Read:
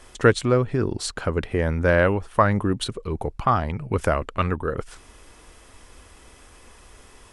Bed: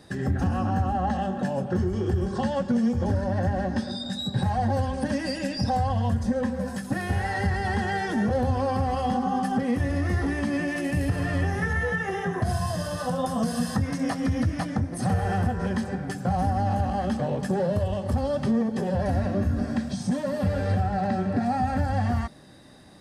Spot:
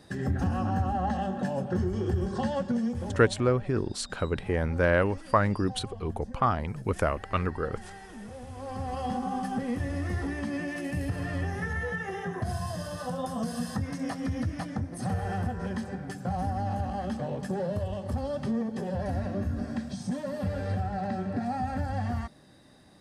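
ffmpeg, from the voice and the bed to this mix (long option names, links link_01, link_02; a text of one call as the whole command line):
ffmpeg -i stem1.wav -i stem2.wav -filter_complex "[0:a]adelay=2950,volume=-5dB[link_01];[1:a]volume=10dB,afade=type=out:start_time=2.55:duration=0.87:silence=0.158489,afade=type=in:start_time=8.5:duration=0.53:silence=0.223872[link_02];[link_01][link_02]amix=inputs=2:normalize=0" out.wav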